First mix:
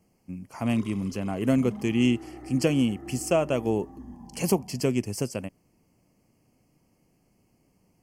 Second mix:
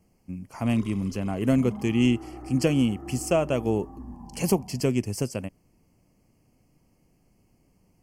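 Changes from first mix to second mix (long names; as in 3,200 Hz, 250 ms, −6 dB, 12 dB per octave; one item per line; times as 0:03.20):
second sound: add low-pass with resonance 1,200 Hz, resonance Q 1.8
master: add low-shelf EQ 70 Hz +10.5 dB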